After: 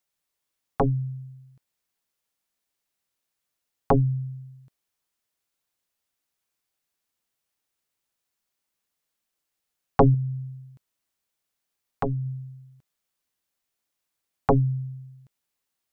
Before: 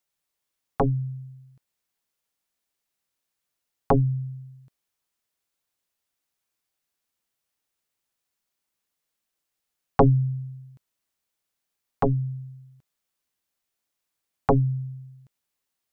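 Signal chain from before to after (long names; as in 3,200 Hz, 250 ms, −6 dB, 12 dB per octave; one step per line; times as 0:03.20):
0:10.14–0:12.26: downward compressor 2 to 1, threshold −27 dBFS, peak gain reduction 5.5 dB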